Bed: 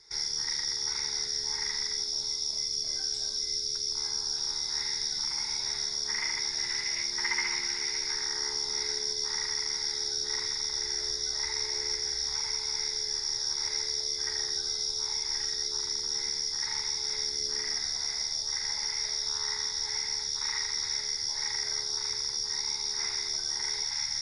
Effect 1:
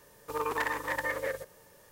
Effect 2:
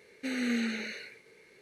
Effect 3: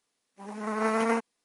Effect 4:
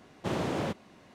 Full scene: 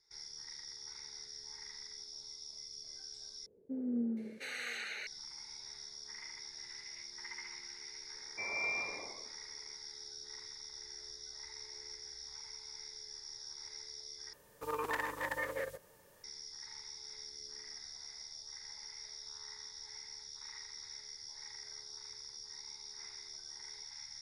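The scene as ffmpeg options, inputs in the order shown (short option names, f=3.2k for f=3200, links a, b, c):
-filter_complex "[2:a]asplit=2[a][b];[0:a]volume=-17dB[c];[a]acrossover=split=590[d][e];[e]adelay=710[f];[d][f]amix=inputs=2:normalize=0[g];[b]lowpass=f=2.2k:t=q:w=0.5098,lowpass=f=2.2k:t=q:w=0.6013,lowpass=f=2.2k:t=q:w=0.9,lowpass=f=2.2k:t=q:w=2.563,afreqshift=-2600[h];[c]asplit=3[i][j][k];[i]atrim=end=3.464[l];[g]atrim=end=1.61,asetpts=PTS-STARTPTS,volume=-3.5dB[m];[j]atrim=start=5.066:end=14.334[n];[1:a]atrim=end=1.91,asetpts=PTS-STARTPTS,volume=-5.5dB[o];[k]atrim=start=16.236[p];[h]atrim=end=1.61,asetpts=PTS-STARTPTS,volume=-6.5dB,afade=t=in:d=0.004:c=hsin,afade=t=out:st=1.606:d=0.004:c=hsin,adelay=8140[q];[l][m]acrossfade=d=0.004:c1=hsin:c2=hsin[r];[r][n]acrossfade=d=0.004:c1=hsin:c2=hsin[s];[s][o]acrossfade=d=0.004:c1=hsin:c2=hsin[t];[t][p]acrossfade=d=0.004:c1=hsin:c2=hsin[u];[u][q]amix=inputs=2:normalize=0"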